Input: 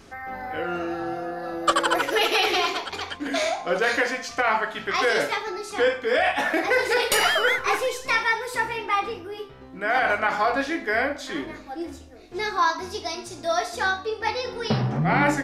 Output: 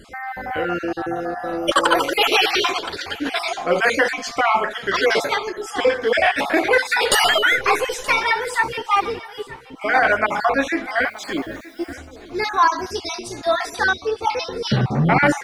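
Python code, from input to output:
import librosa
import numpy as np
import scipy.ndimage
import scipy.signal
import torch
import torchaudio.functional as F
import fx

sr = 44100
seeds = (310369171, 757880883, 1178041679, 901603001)

y = fx.spec_dropout(x, sr, seeds[0], share_pct=35)
y = fx.dmg_noise_colour(y, sr, seeds[1], colour='blue', level_db=-64.0, at=(11.05, 11.92), fade=0.02)
y = fx.echo_feedback(y, sr, ms=924, feedback_pct=24, wet_db=-19.0)
y = y * 10.0 ** (6.0 / 20.0)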